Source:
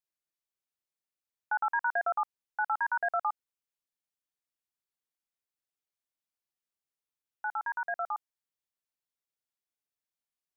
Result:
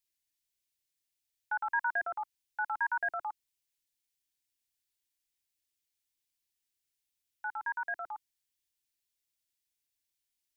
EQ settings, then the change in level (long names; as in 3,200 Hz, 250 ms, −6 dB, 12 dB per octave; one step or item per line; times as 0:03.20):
dynamic equaliser 1,100 Hz, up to +5 dB, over −46 dBFS, Q 4.3
flat-topped bell 560 Hz −14 dB 1.2 octaves
phaser with its sweep stopped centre 490 Hz, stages 4
+8.0 dB